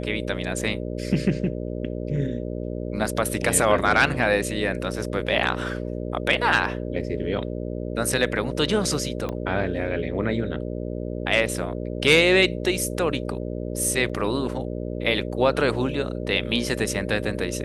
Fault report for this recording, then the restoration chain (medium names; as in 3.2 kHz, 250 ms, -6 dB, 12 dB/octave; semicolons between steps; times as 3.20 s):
buzz 60 Hz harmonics 10 -30 dBFS
9.29 s: pop -17 dBFS
14.09–14.10 s: dropout 5.8 ms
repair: de-click; de-hum 60 Hz, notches 10; interpolate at 14.09 s, 5.8 ms